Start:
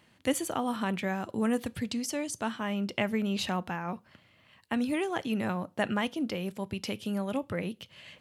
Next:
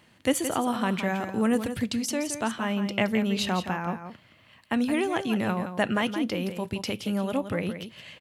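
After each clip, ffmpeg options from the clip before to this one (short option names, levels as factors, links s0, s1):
-af "aecho=1:1:170:0.335,volume=1.58"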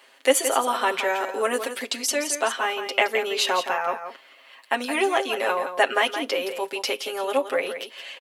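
-af "highpass=f=410:w=0.5412,highpass=f=410:w=1.3066,aecho=1:1:7.4:0.87,volume=1.78"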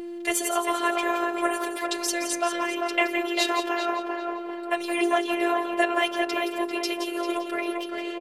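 -filter_complex "[0:a]asplit=2[s0][s1];[s1]adelay=395,lowpass=f=1800:p=1,volume=0.708,asplit=2[s2][s3];[s3]adelay=395,lowpass=f=1800:p=1,volume=0.49,asplit=2[s4][s5];[s5]adelay=395,lowpass=f=1800:p=1,volume=0.49,asplit=2[s6][s7];[s7]adelay=395,lowpass=f=1800:p=1,volume=0.49,asplit=2[s8][s9];[s9]adelay=395,lowpass=f=1800:p=1,volume=0.49,asplit=2[s10][s11];[s11]adelay=395,lowpass=f=1800:p=1,volume=0.49[s12];[s0][s2][s4][s6][s8][s10][s12]amix=inputs=7:normalize=0,aeval=exprs='val(0)+0.0501*sin(2*PI*440*n/s)':c=same,afftfilt=real='hypot(re,im)*cos(PI*b)':imag='0':win_size=512:overlap=0.75"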